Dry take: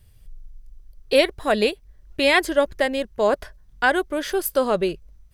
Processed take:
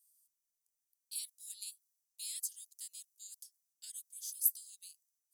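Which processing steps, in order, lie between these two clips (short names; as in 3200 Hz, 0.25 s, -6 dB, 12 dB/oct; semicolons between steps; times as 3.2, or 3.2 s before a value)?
inverse Chebyshev high-pass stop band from 1200 Hz, stop band 80 dB; in parallel at -0.5 dB: compressor, threshold -55 dBFS, peak gain reduction 29.5 dB; on the sum: mismatched tape noise reduction decoder only; gain -2 dB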